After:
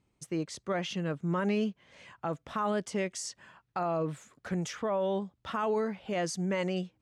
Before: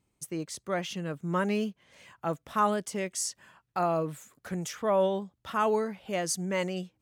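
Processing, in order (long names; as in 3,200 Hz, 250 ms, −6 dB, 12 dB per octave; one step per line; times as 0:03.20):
brickwall limiter −24 dBFS, peak gain reduction 9.5 dB
high-frequency loss of the air 73 metres
level +2 dB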